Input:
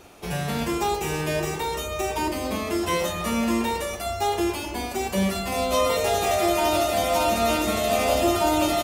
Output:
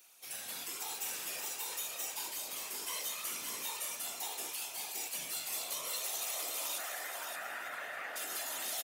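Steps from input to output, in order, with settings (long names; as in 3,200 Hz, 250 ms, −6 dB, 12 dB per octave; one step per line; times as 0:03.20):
0:06.78–0:08.16: low-pass with resonance 1,700 Hz, resonance Q 13
feedback echo with a high-pass in the loop 198 ms, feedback 72%, level −10.5 dB
brickwall limiter −16 dBFS, peak gain reduction 8 dB
random phases in short frames
first difference
single-tap delay 575 ms −6 dB
level −4 dB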